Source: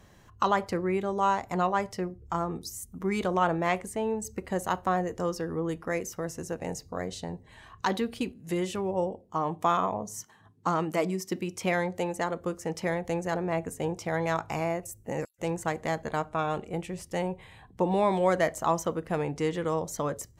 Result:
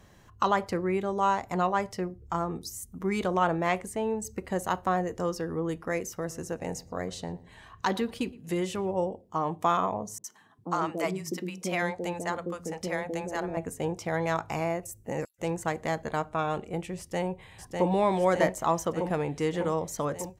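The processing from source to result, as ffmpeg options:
-filter_complex "[0:a]asettb=1/sr,asplit=3[a][b][c];[a]atrim=end=6.104[d];[b]atrim=start=6.1:end=8.93,asetpts=PTS-STARTPTS,afade=t=in:d=0.004:c=qsin,afade=t=out:st=2.826:d=0.004:c=qsin,asplit=2[e][f];[f]adelay=116,lowpass=f=2k:p=1,volume=-20dB,asplit=2[g][h];[h]adelay=116,lowpass=f=2k:p=1,volume=0.36,asplit=2[i][j];[j]adelay=116,lowpass=f=2k:p=1,volume=0.36[k];[e][g][i][k]amix=inputs=4:normalize=0,atrim=end_sample=124803[l];[c]atrim=start=8.926[m];[d][l]acrossfade=d=0.004:c1=hsin:c2=qsin[n];[n][m]acrossfade=d=0.004:c1=qsin:c2=hsin,asettb=1/sr,asplit=3[o][p][q];[o]atrim=end=10.184[r];[p]atrim=start=10.18:end=13.57,asetpts=PTS-STARTPTS,afade=t=in:d=0.004:c=qsin,afade=t=out:st=3.386:d=0.004:c=qsin,acrossover=split=160|530[s][t][u];[u]adelay=60[v];[s]adelay=400[w];[w][t][v]amix=inputs=3:normalize=0,atrim=end_sample=149499[x];[q]atrim=start=13.566[y];[r][x]acrossfade=d=0.004:c1=hsin:c2=qsin[z];[z][y]acrossfade=d=0.004:c1=qsin:c2=hsin,asplit=2[aa][ab];[ab]afade=t=in:st=16.98:d=0.01,afade=t=out:st=17.89:d=0.01,aecho=0:1:600|1200|1800|2400|3000|3600|4200|4800|5400|6000|6600|7200:0.668344|0.467841|0.327489|0.229242|0.160469|0.112329|0.07863|0.055041|0.0385287|0.0269701|0.0188791|0.0132153[ac];[aa][ac]amix=inputs=2:normalize=0"

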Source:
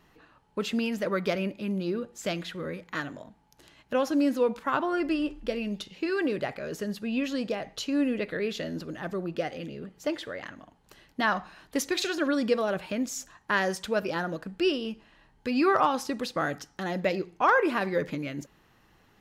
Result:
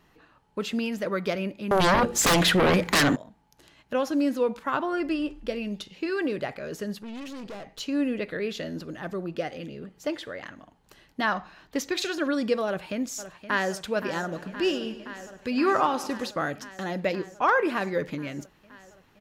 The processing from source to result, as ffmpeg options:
-filter_complex "[0:a]asettb=1/sr,asplit=3[a][b][c];[a]atrim=end=1.714[d];[b]atrim=start=1.71:end=3.16,asetpts=PTS-STARTPTS,afade=t=in:d=0.004:c=qsin,afade=t=out:st=1.446:d=0.004:c=qsin,aeval=exprs='0.15*sin(PI/2*7.08*val(0)/0.15)':c=same[e];[c]atrim=start=3.156[f];[d][e]acrossfade=d=0.004:c1=hsin:c2=qsin[g];[g][f]acrossfade=d=0.004:c1=qsin:c2=hsin,asplit=3[h][i][j];[h]afade=t=out:st=6.98:d=0.02[k];[i]aeval=exprs='(tanh(63.1*val(0)+0.45)-tanh(0.45))/63.1':c=same,afade=t=in:st=6.98:d=0.02,afade=t=out:st=7.79:d=0.02[l];[j]afade=t=in:st=7.79:d=0.02[m];[k][l][m]amix=inputs=3:normalize=0,asettb=1/sr,asplit=3[n][o][p];[n]atrim=end=11.324[q];[o]atrim=start=11.32:end=11.96,asetpts=PTS-STARTPTS,afade=t=in:d=0.004:c=qsin,afade=t=out:st=0.636:d=0.004:c=qsin,equalizer=f=10k:t=o:w=0.56:g=-10.5[r];[p]atrim=start=11.956[s];[q][r]acrossfade=d=0.004:c1=hsin:c2=qsin[t];[t][s]acrossfade=d=0.004:c1=qsin:c2=hsin,asplit=2[u][v];[v]afade=t=in:st=12.66:d=0.01,afade=t=out:st=13.7:d=0.01,aecho=0:1:520|1040|1560|2080|2600|3120|3640|4160|4680|5200|5720|6240:0.237137|0.201567|0.171332|0.145632|0.123787|0.105219|0.0894362|0.0760208|0.0646177|0.054925|0.0466863|0.0396833[w];[u][w]amix=inputs=2:normalize=0,asplit=3[x][y][z];[x]afade=t=out:st=14.31:d=0.02[aa];[y]aecho=1:1:100|200|300|400|500|600:0.178|0.103|0.0598|0.0347|0.0201|0.0117,afade=t=in:st=14.31:d=0.02,afade=t=out:st=16.29:d=0.02[ab];[z]afade=t=in:st=16.29:d=0.02[ac];[aa][ab][ac]amix=inputs=3:normalize=0"

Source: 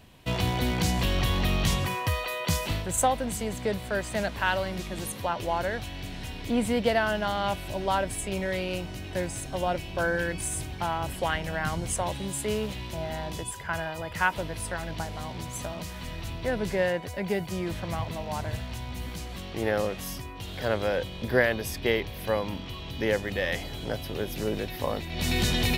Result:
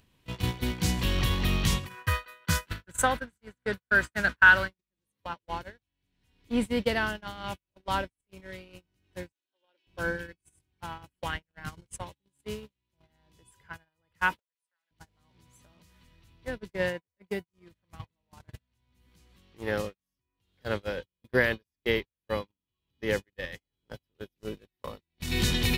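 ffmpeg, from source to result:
-filter_complex "[0:a]asplit=3[a][b][c];[a]afade=t=out:st=1.89:d=0.02[d];[b]equalizer=f=1.5k:t=o:w=0.51:g=14.5,afade=t=in:st=1.89:d=0.02,afade=t=out:st=4.67:d=0.02[e];[c]afade=t=in:st=4.67:d=0.02[f];[d][e][f]amix=inputs=3:normalize=0,asettb=1/sr,asplit=3[g][h][i];[g]atrim=end=9.324[j];[h]atrim=start=9.32:end=9.87,asetpts=PTS-STARTPTS,afade=t=in:d=0.004:c=qsin,afade=t=out:st=0.546:d=0.004:c=qsin,highpass=f=390:w=0.5412,highpass=f=390:w=1.3066,equalizer=f=460:t=q:w=4:g=-7,equalizer=f=720:t=q:w=4:g=-8,equalizer=f=1.2k:t=q:w=4:g=-9,equalizer=f=2.1k:t=q:w=4:g=-6,equalizer=f=3.3k:t=q:w=4:g=4,lowpass=f=4.8k:w=0.5412,lowpass=f=4.8k:w=1.3066[k];[i]atrim=start=9.866[l];[j][k]acrossfade=d=0.004:c1=hsin:c2=qsin[m];[m][l]acrossfade=d=0.004:c1=qsin:c2=hsin,asettb=1/sr,asplit=3[n][o][p];[n]atrim=end=14.394[q];[o]atrim=start=14.39:end=14.91,asetpts=PTS-STARTPTS,afade=t=in:d=0.004:c=qsin,afade=t=out:st=0.516:d=0.004:c=qsin,highpass=950[r];[p]atrim=start=14.906[s];[q][r]acrossfade=d=0.004:c1=hsin:c2=qsin[t];[t][s]acrossfade=d=0.004:c1=qsin:c2=hsin,agate=range=-60dB:threshold=-25dB:ratio=16:detection=peak,equalizer=f=680:t=o:w=0.5:g=-9,acompressor=mode=upward:threshold=-31dB:ratio=2.5"

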